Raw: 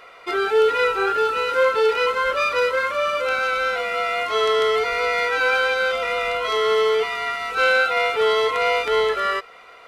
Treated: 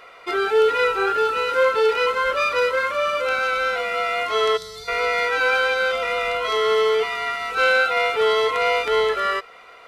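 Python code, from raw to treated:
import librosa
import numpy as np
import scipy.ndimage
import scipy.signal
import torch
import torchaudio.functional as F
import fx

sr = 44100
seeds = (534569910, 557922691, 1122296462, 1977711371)

y = fx.spec_box(x, sr, start_s=4.57, length_s=0.31, low_hz=200.0, high_hz=3500.0, gain_db=-20)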